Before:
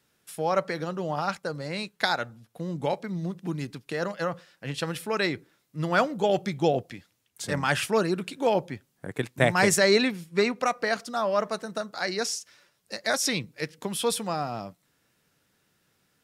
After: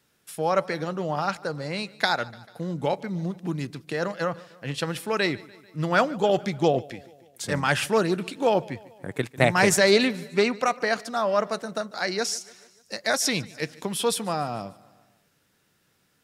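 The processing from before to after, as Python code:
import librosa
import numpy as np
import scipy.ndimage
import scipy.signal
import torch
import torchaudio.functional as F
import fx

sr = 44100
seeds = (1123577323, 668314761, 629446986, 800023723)

y = fx.echo_feedback(x, sr, ms=147, feedback_pct=58, wet_db=-22)
y = fx.doppler_dist(y, sr, depth_ms=0.11)
y = F.gain(torch.from_numpy(y), 2.0).numpy()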